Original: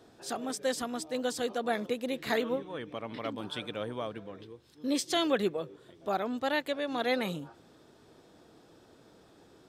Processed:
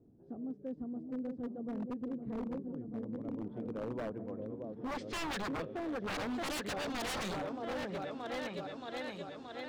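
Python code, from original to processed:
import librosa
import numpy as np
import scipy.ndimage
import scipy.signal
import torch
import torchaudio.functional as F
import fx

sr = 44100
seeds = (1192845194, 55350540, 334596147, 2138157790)

y = fx.filter_sweep_lowpass(x, sr, from_hz=240.0, to_hz=6200.0, start_s=3.08, end_s=6.4, q=0.95)
y = fx.echo_opening(y, sr, ms=625, hz=750, octaves=2, feedback_pct=70, wet_db=-6)
y = 10.0 ** (-31.5 / 20.0) * (np.abs((y / 10.0 ** (-31.5 / 20.0) + 3.0) % 4.0 - 2.0) - 1.0)
y = y * 10.0 ** (-1.0 / 20.0)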